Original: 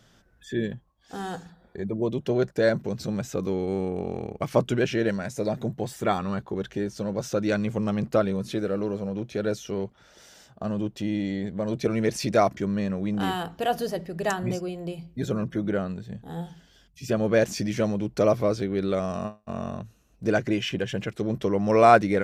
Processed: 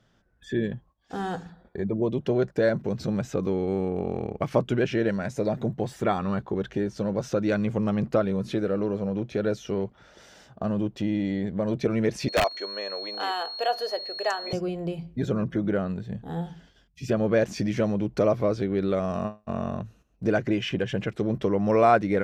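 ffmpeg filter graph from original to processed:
ffmpeg -i in.wav -filter_complex "[0:a]asettb=1/sr,asplit=3[link_01][link_02][link_03];[link_01]atrim=end=12.284[link_04];[link_02]atrim=start=12.28:end=14.53,asetpts=PTS-STARTPTS,afade=type=in:duration=0.004:curve=qsin,afade=type=out:start_time=2.246:duration=0.004:curve=qsin,highpass=frequency=470:width=0.5412,highpass=frequency=470:width=1.3066,aeval=exprs='(mod(4.22*val(0)+1,2)-1)/4.22':channel_layout=same,aeval=exprs='val(0)+0.0251*sin(2*PI*4300*n/s)':channel_layout=same[link_05];[link_03]atrim=start=14.526[link_06];[link_04][link_05]acrossfade=duration=0.004:curve1=hsin:curve2=qsin[link_07];[link_07][link_06]acrossfade=duration=0.004:curve1=qsin:curve2=hsin,acompressor=threshold=-29dB:ratio=1.5,agate=range=-9dB:threshold=-56dB:ratio=16:detection=peak,lowpass=frequency=2800:poles=1,volume=3.5dB" out.wav

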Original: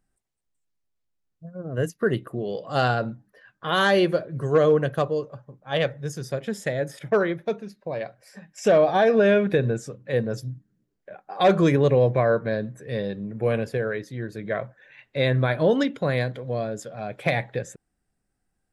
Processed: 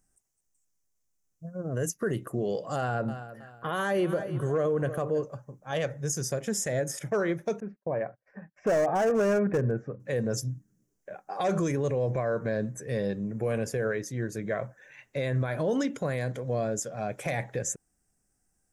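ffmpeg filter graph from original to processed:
ffmpeg -i in.wav -filter_complex "[0:a]asettb=1/sr,asplit=3[link_01][link_02][link_03];[link_01]atrim=end=2.764[link_04];[link_02]atrim=start=2.76:end=5.23,asetpts=PTS-STARTPTS,afade=type=in:duration=0.004:curve=qsin,afade=type=out:start_time=2.466:duration=0.004:curve=qsin,equalizer=frequency=5700:width_type=o:width=1.1:gain=-13.5,aecho=1:1:320|640|960:0.112|0.037|0.0122,atrim=end_sample=108927[link_05];[link_03]atrim=start=5.226[link_06];[link_04][link_05]acrossfade=duration=0.004:curve1=hsin:curve2=qsin[link_07];[link_07][link_06]acrossfade=duration=0.004:curve1=qsin:curve2=hsin,asettb=1/sr,asplit=3[link_08][link_09][link_10];[link_08]atrim=end=7.604[link_11];[link_09]atrim=start=7.6:end=10,asetpts=PTS-STARTPTS,afade=type=in:duration=0.004:curve=qsin,afade=type=out:start_time=2.396:duration=0.004:curve=qsin,agate=range=-27dB:threshold=-53dB:ratio=16:release=100:detection=peak,lowpass=frequency=1900:width=0.5412,lowpass=frequency=1900:width=1.3066,asoftclip=type=hard:threshold=-15.5dB[link_12];[link_10]atrim=start=9.996[link_13];[link_11][link_12]acrossfade=duration=0.004:curve1=hsin:curve2=qsin[link_14];[link_14][link_13]acrossfade=duration=0.004:curve1=qsin:curve2=hsin,highshelf=frequency=5000:width_type=q:width=3:gain=7.5,alimiter=limit=-20dB:level=0:latency=1:release=60" out.wav

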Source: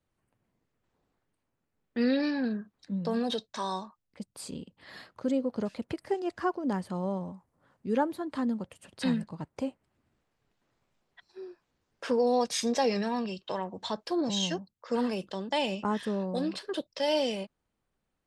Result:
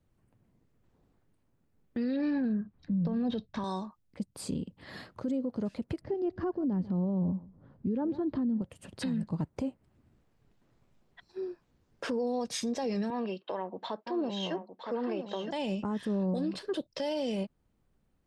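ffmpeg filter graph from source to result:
ffmpeg -i in.wav -filter_complex "[0:a]asettb=1/sr,asplit=3[link_01][link_02][link_03];[link_01]atrim=end=2.164[link_04];[link_02]atrim=start=2.16:end=3.64,asetpts=PTS-STARTPTS,afade=type=in:duration=0.004:curve=qsin,afade=type=out:start_time=1.476:duration=0.004:curve=qsin,lowpass=3100,asubboost=boost=7:cutoff=210[link_05];[link_03]atrim=start=3.636[link_06];[link_04][link_05]acrossfade=duration=0.004:curve1=hsin:curve2=qsin[link_07];[link_07][link_06]acrossfade=duration=0.004:curve1=qsin:curve2=hsin,asettb=1/sr,asplit=3[link_08][link_09][link_10];[link_08]atrim=end=6.014[link_11];[link_09]atrim=start=6.01:end=8.62,asetpts=PTS-STARTPTS,afade=type=in:duration=0.004:curve=qsin,afade=type=out:start_time=2.606:duration=0.004:curve=qsin,lowpass=frequency=5200:width=0.5412,lowpass=frequency=5200:width=1.3066,tiltshelf=frequency=640:gain=6.5,aecho=1:1:145:0.0708,atrim=end_sample=115101[link_12];[link_10]atrim=start=8.616[link_13];[link_11][link_12]acrossfade=duration=0.004:curve1=hsin:curve2=qsin[link_14];[link_14][link_13]acrossfade=duration=0.004:curve1=qsin:curve2=hsin,asettb=1/sr,asplit=3[link_15][link_16][link_17];[link_15]atrim=end=13.104[link_18];[link_16]atrim=start=13.1:end=15.51,asetpts=PTS-STARTPTS,afade=type=in:duration=0.004:curve=qsin,afade=type=out:start_time=2.406:duration=0.004:curve=qsin,highpass=370,lowpass=2700,aecho=1:1:963:0.335,atrim=end_sample=106281[link_19];[link_17]atrim=start=15.506[link_20];[link_18][link_19]acrossfade=duration=0.004:curve1=hsin:curve2=qsin[link_21];[link_21][link_20]acrossfade=duration=0.004:curve1=qsin:curve2=hsin,lowshelf=frequency=420:gain=11.5,alimiter=level_in=0.5dB:limit=-24dB:level=0:latency=1:release=218,volume=-0.5dB" out.wav

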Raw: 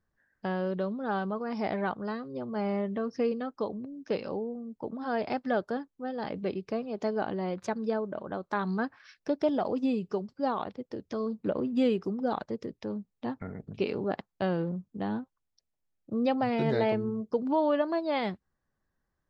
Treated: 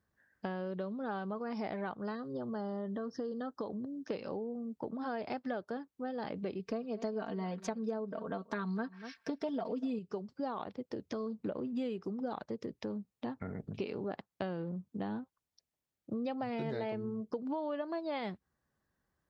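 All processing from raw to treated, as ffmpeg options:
ffmpeg -i in.wav -filter_complex "[0:a]asettb=1/sr,asplit=3[link_01][link_02][link_03];[link_01]atrim=end=2.154[link_04];[link_02]atrim=start=2.15:end=4.07,asetpts=PTS-STARTPTS,afade=type=in:duration=0.004:curve=qsin,afade=type=out:start_time=1.916:duration=0.004:curve=qsin,acompressor=threshold=-32dB:ratio=2:attack=3.2:release=140:knee=1:detection=peak,asuperstop=centerf=2400:order=8:qfactor=2.2[link_05];[link_03]atrim=start=4.066[link_06];[link_04][link_05]acrossfade=duration=0.004:curve1=hsin:curve2=qsin[link_07];[link_07][link_06]acrossfade=duration=0.004:curve1=qsin:curve2=hsin,asettb=1/sr,asplit=3[link_08][link_09][link_10];[link_08]atrim=end=6.594[link_11];[link_09]atrim=start=6.59:end=9.99,asetpts=PTS-STARTPTS,afade=type=in:duration=0.004:curve=qsin,afade=type=out:start_time=3.396:duration=0.004:curve=qsin,bandreject=frequency=820:width=11,aecho=1:1:4.4:0.86,atrim=end_sample=149940,aecho=1:1:241:0.1,atrim=end_sample=149940[link_12];[link_10]atrim=start=9.986[link_13];[link_11][link_12]acrossfade=duration=0.004:curve1=hsin:curve2=qsin[link_14];[link_14][link_13]acrossfade=duration=0.004:curve1=qsin:curve2=hsin,highpass=55,acompressor=threshold=-37dB:ratio=4,volume=1dB" out.wav

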